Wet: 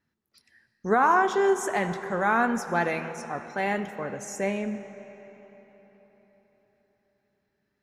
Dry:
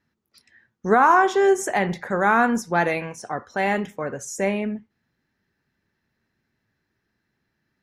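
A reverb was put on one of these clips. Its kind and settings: digital reverb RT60 4.5 s, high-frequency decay 0.7×, pre-delay 45 ms, DRR 11 dB; gain -5 dB

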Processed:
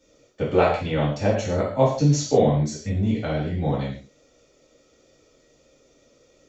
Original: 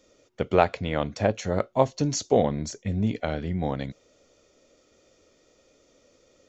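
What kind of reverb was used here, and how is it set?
non-linear reverb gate 0.19 s falling, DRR -7.5 dB; gain -6 dB

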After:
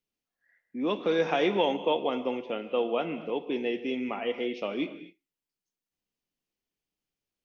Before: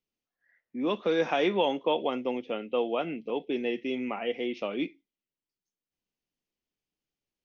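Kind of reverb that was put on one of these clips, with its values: non-linear reverb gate 0.28 s flat, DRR 10.5 dB

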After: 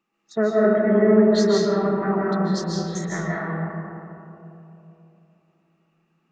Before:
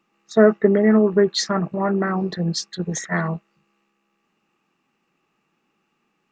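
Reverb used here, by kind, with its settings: digital reverb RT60 3.2 s, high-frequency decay 0.3×, pre-delay 0.11 s, DRR -5.5 dB; gain -8.5 dB

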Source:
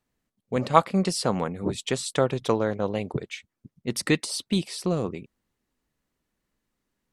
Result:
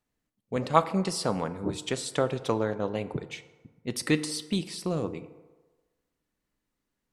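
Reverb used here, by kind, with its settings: FDN reverb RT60 1.3 s, low-frequency decay 0.75×, high-frequency decay 0.5×, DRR 11.5 dB; gain -3.5 dB

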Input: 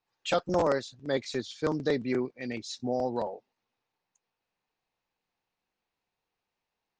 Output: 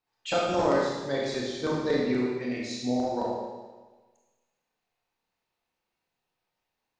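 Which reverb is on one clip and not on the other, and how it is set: Schroeder reverb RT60 1.3 s, combs from 25 ms, DRR -3.5 dB; gain -2.5 dB

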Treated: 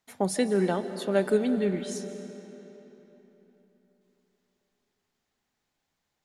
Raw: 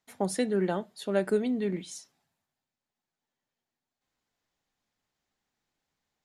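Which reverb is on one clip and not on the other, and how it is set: digital reverb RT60 3.8 s, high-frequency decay 0.75×, pre-delay 0.105 s, DRR 10 dB; gain +2.5 dB

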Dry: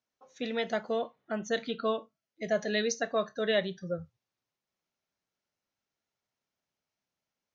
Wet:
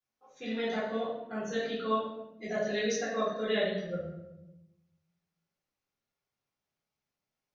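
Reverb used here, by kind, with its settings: shoebox room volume 320 m³, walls mixed, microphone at 3.8 m; gain -11.5 dB

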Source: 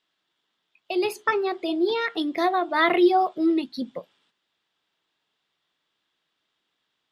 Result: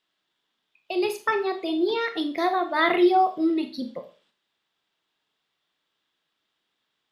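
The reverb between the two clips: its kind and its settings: Schroeder reverb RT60 0.35 s, combs from 28 ms, DRR 7.5 dB; gain -1.5 dB

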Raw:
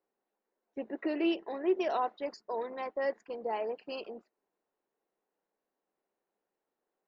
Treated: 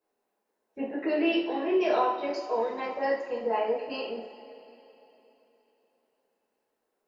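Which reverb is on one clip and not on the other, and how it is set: two-slope reverb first 0.52 s, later 3.5 s, from -18 dB, DRR -8.5 dB; gain -2 dB

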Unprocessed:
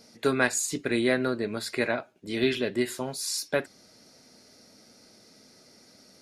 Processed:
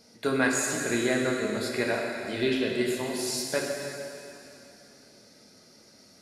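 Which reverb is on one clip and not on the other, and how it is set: plate-style reverb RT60 3 s, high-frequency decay 0.95×, DRR -0.5 dB; gain -3 dB

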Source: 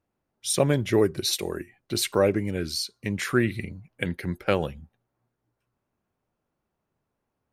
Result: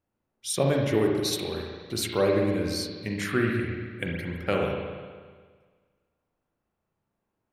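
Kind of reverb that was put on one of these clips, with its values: spring tank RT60 1.6 s, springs 36/59 ms, chirp 35 ms, DRR -0.5 dB; gain -4 dB

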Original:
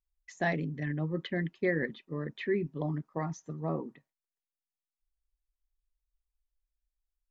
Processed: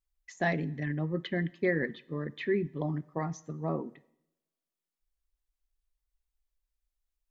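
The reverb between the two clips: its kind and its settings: two-slope reverb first 0.75 s, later 1.9 s, from -26 dB, DRR 19 dB; gain +1 dB

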